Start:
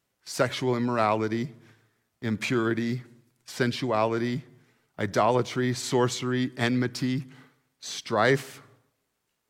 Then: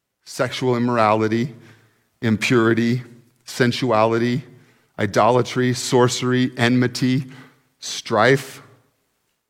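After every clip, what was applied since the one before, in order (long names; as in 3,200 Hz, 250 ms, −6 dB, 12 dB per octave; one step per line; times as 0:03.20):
automatic gain control gain up to 10 dB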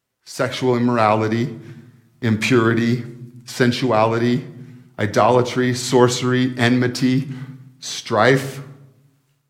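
convolution reverb RT60 0.85 s, pre-delay 8 ms, DRR 9.5 dB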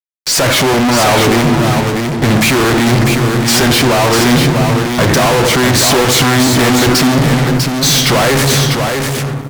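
fuzz pedal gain 41 dB, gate −49 dBFS
single-tap delay 647 ms −5 dB
level +3 dB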